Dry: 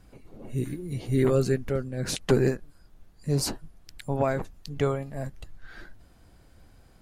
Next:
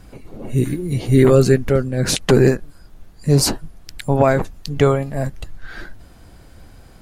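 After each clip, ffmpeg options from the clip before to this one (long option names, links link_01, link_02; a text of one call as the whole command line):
ffmpeg -i in.wav -af "alimiter=level_in=12.5dB:limit=-1dB:release=50:level=0:latency=1,volume=-1dB" out.wav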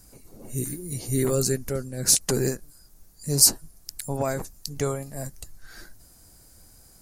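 ffmpeg -i in.wav -af "aexciter=amount=8.6:drive=3.1:freq=4700,volume=-12.5dB" out.wav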